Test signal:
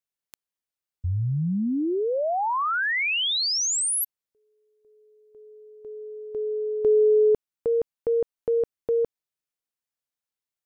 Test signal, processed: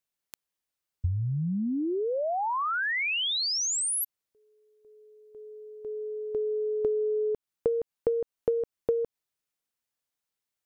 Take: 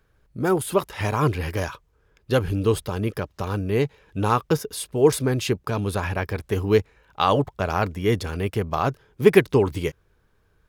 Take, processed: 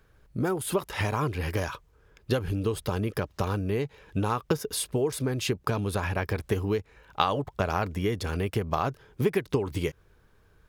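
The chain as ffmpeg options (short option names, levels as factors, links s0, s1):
-af "acompressor=threshold=0.0251:ratio=6:attack=74:release=242:knee=6:detection=peak,volume=1.41"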